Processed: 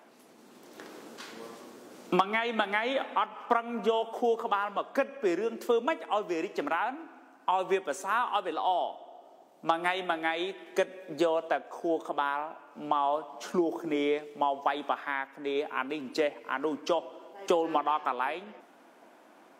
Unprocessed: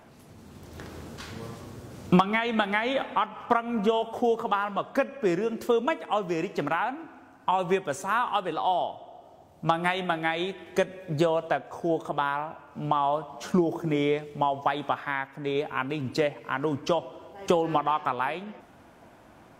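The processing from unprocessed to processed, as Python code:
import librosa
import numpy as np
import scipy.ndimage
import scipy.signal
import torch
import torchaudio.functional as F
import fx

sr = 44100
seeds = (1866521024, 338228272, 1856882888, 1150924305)

y = scipy.signal.sosfilt(scipy.signal.butter(4, 250.0, 'highpass', fs=sr, output='sos'), x)
y = y * librosa.db_to_amplitude(-2.5)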